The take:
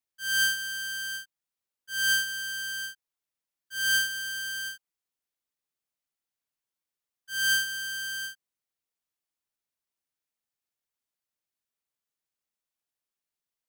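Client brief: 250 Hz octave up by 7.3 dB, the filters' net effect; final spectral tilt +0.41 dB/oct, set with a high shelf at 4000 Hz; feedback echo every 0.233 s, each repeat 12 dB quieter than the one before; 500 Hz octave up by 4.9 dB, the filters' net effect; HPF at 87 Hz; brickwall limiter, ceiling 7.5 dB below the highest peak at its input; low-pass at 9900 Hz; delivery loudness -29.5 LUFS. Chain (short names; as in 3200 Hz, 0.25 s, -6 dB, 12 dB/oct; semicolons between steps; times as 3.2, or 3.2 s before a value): HPF 87 Hz; LPF 9900 Hz; bell 250 Hz +8.5 dB; bell 500 Hz +3.5 dB; high shelf 4000 Hz +3.5 dB; limiter -21.5 dBFS; feedback echo 0.233 s, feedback 25%, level -12 dB; gain +0.5 dB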